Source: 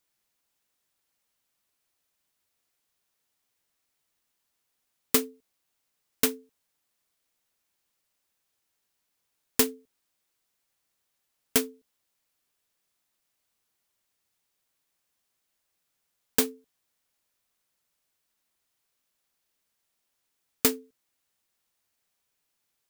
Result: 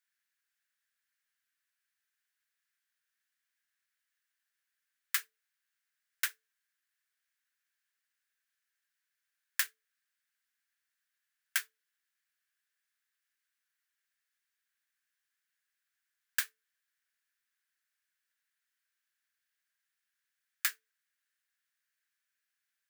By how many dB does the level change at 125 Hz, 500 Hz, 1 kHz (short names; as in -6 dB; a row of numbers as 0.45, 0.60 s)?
under -40 dB, under -40 dB, -10.0 dB